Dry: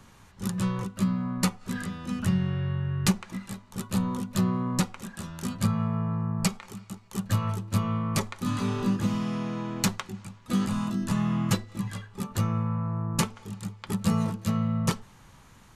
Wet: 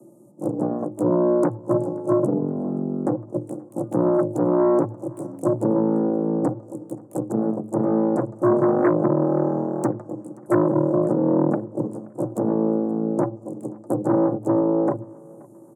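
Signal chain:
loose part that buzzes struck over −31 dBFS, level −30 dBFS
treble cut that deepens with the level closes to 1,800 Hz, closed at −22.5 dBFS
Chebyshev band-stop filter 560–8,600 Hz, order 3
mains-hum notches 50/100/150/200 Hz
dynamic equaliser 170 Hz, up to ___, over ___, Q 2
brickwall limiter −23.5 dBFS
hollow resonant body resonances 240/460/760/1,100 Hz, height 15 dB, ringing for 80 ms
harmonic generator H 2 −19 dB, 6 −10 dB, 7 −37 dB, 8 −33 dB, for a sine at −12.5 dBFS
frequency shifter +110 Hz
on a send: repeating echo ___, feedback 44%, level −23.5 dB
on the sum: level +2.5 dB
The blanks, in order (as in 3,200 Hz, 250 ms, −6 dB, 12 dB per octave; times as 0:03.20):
−4 dB, −41 dBFS, 527 ms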